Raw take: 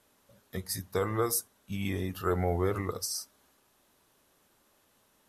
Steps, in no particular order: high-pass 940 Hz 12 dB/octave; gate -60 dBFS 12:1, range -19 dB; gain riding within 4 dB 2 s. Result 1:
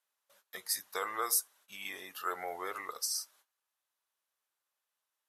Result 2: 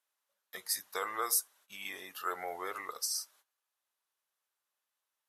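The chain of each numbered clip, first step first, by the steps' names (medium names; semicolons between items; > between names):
gate > gain riding > high-pass; gain riding > high-pass > gate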